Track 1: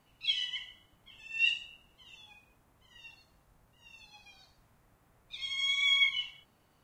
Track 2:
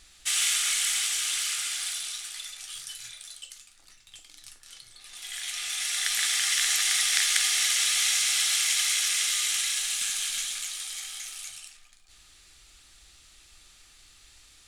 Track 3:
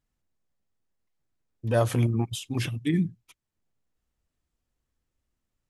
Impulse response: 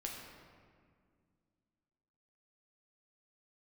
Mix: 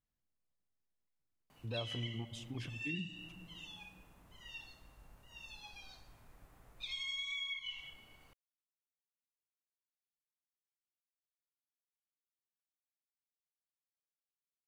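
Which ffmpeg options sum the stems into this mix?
-filter_complex "[0:a]asubboost=boost=3:cutoff=58,acompressor=threshold=-36dB:ratio=6,adelay=1500,volume=0.5dB,asplit=2[link_01][link_02];[link_02]volume=-6.5dB[link_03];[2:a]lowpass=6500,volume=-11.5dB,asplit=2[link_04][link_05];[link_05]volume=-12.5dB[link_06];[3:a]atrim=start_sample=2205[link_07];[link_03][link_06]amix=inputs=2:normalize=0[link_08];[link_08][link_07]afir=irnorm=-1:irlink=0[link_09];[link_01][link_04][link_09]amix=inputs=3:normalize=0,acompressor=threshold=-43dB:ratio=2"

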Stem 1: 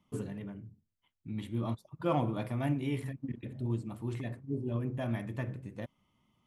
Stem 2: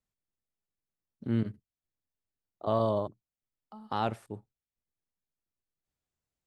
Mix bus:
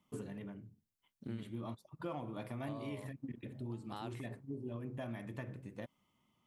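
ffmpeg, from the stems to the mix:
ffmpeg -i stem1.wav -i stem2.wav -filter_complex "[0:a]lowshelf=frequency=110:gain=-9.5,volume=-2dB[link_01];[1:a]highshelf=frequency=3600:gain=12,tremolo=f=0.84:d=0.62,volume=-8dB[link_02];[link_01][link_02]amix=inputs=2:normalize=0,acompressor=threshold=-39dB:ratio=5" out.wav

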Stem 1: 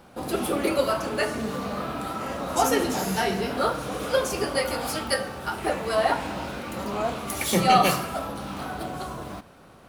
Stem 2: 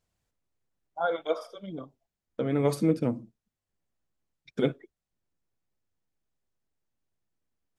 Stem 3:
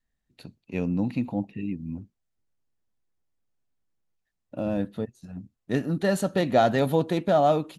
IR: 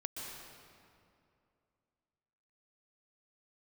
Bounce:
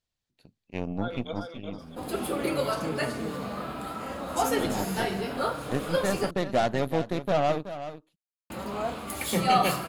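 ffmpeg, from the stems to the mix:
-filter_complex "[0:a]bandreject=frequency=5800:width=6.9,flanger=delay=3.4:depth=4.4:regen=-71:speed=0.41:shape=triangular,adelay=1800,volume=0dB,asplit=3[link_01][link_02][link_03];[link_01]atrim=end=6.31,asetpts=PTS-STARTPTS,afade=type=out:start_time=6.306:duration=0.004:curve=hsin[link_04];[link_02]atrim=start=6.31:end=8.5,asetpts=PTS-STARTPTS,volume=0[link_05];[link_03]atrim=start=8.5,asetpts=PTS-STARTPTS,afade=type=in:duration=0.004:curve=hsin[link_06];[link_04][link_05][link_06]concat=n=3:v=0:a=1[link_07];[1:a]equalizer=frequency=3900:width=0.89:gain=10,volume=-9.5dB,asplit=2[link_08][link_09];[link_09]volume=-5dB[link_10];[2:a]acontrast=81,aeval=exprs='0.631*(cos(1*acos(clip(val(0)/0.631,-1,1)))-cos(1*PI/2))+0.0447*(cos(6*acos(clip(val(0)/0.631,-1,1)))-cos(6*PI/2))+0.0631*(cos(7*acos(clip(val(0)/0.631,-1,1)))-cos(7*PI/2))':channel_layout=same,volume=-11dB,asplit=2[link_11][link_12];[link_12]volume=-12dB[link_13];[link_10][link_13]amix=inputs=2:normalize=0,aecho=0:1:375:1[link_14];[link_07][link_08][link_11][link_14]amix=inputs=4:normalize=0"

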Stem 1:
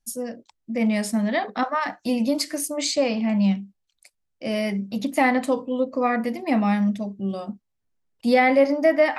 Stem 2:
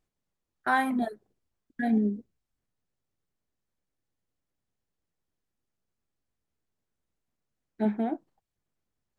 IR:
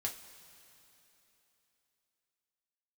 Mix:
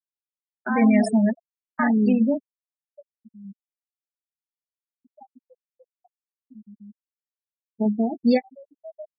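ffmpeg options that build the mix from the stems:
-filter_complex "[0:a]volume=0.5dB[link_01];[1:a]highpass=frequency=76:width=0.5412,highpass=frequency=76:width=1.3066,lowshelf=frequency=110:gain=9,alimiter=limit=-20.5dB:level=0:latency=1:release=73,volume=2dB,asplit=3[link_02][link_03][link_04];[link_03]volume=-16dB[link_05];[link_04]apad=whole_len=405260[link_06];[link_01][link_06]sidechaingate=range=-24dB:threshold=-57dB:ratio=16:detection=peak[link_07];[2:a]atrim=start_sample=2205[link_08];[link_05][link_08]afir=irnorm=-1:irlink=0[link_09];[link_07][link_02][link_09]amix=inputs=3:normalize=0,afftfilt=real='re*gte(hypot(re,im),0.0794)':imag='im*gte(hypot(re,im),0.0794)':win_size=1024:overlap=0.75,aecho=1:1:4.7:0.53"

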